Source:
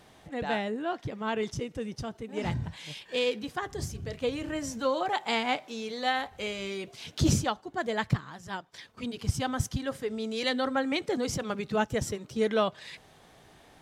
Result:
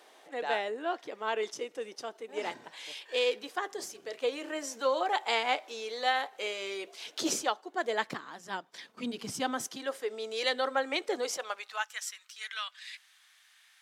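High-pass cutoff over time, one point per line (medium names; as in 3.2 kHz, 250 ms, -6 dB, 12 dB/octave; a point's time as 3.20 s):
high-pass 24 dB/octave
7.65 s 360 Hz
9.05 s 170 Hz
9.95 s 380 Hz
11.21 s 380 Hz
12.04 s 1.5 kHz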